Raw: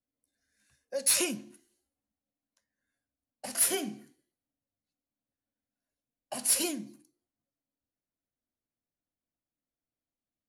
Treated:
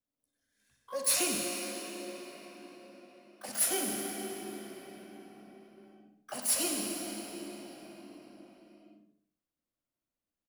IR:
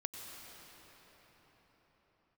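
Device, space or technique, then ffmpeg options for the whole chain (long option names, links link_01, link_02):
shimmer-style reverb: -filter_complex "[0:a]asplit=2[link_01][link_02];[link_02]asetrate=88200,aresample=44100,atempo=0.5,volume=-9dB[link_03];[link_01][link_03]amix=inputs=2:normalize=0[link_04];[1:a]atrim=start_sample=2205[link_05];[link_04][link_05]afir=irnorm=-1:irlink=0,asettb=1/sr,asplit=3[link_06][link_07][link_08];[link_06]atrim=end=1.424[link_09];[link_07]atrim=start=1.42:end=3.49,asetpts=PTS-STARTPTS,afade=type=in:duration=0.004:curve=qsin,afade=type=out:start_time=2.066:duration=0.004:curve=qsin,highpass=240[link_10];[link_08]atrim=start=3.486[link_11];[link_09][link_10]acrossfade=duration=0.004:curve1=hsin:curve2=qsin[link_12];[link_12][link_11]acrossfade=duration=0.004:curve1=qsin:curve2=hsin,asplit=2[link_13][link_14];[link_14]adelay=62,lowpass=frequency=3700:poles=1,volume=-7dB,asplit=2[link_15][link_16];[link_16]adelay=62,lowpass=frequency=3700:poles=1,volume=0.5,asplit=2[link_17][link_18];[link_18]adelay=62,lowpass=frequency=3700:poles=1,volume=0.5,asplit=2[link_19][link_20];[link_20]adelay=62,lowpass=frequency=3700:poles=1,volume=0.5,asplit=2[link_21][link_22];[link_22]adelay=62,lowpass=frequency=3700:poles=1,volume=0.5,asplit=2[link_23][link_24];[link_24]adelay=62,lowpass=frequency=3700:poles=1,volume=0.5[link_25];[link_13][link_15][link_17][link_19][link_21][link_23][link_25]amix=inputs=7:normalize=0"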